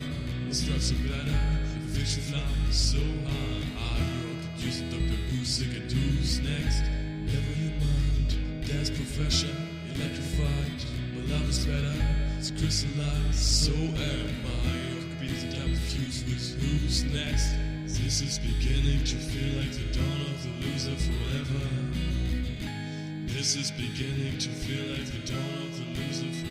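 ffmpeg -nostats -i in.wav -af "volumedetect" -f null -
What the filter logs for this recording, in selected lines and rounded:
mean_volume: -28.5 dB
max_volume: -12.2 dB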